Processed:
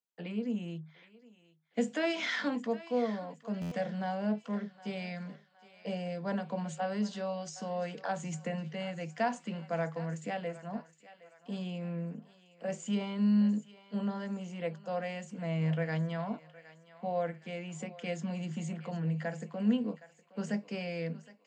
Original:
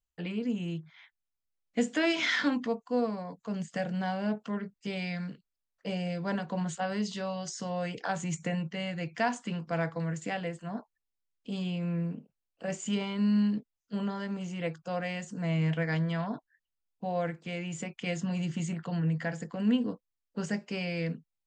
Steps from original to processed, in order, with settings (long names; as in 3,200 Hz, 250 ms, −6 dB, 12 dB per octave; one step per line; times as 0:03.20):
Chebyshev high-pass with heavy ripple 150 Hz, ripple 6 dB
feedback echo with a high-pass in the loop 765 ms, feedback 49%, high-pass 690 Hz, level −15.5 dB
buffer that repeats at 0:03.61, samples 512, times 8